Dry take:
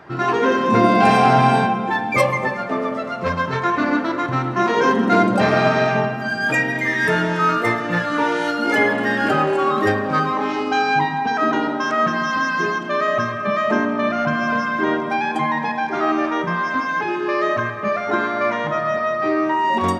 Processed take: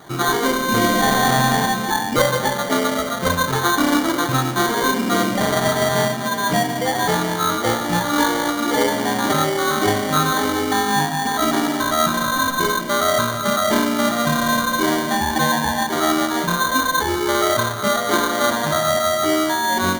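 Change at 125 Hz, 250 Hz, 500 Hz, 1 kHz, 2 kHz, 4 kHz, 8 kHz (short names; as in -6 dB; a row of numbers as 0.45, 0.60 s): +0.5, +0.5, -0.5, -0.5, -1.5, +8.5, +17.0 dB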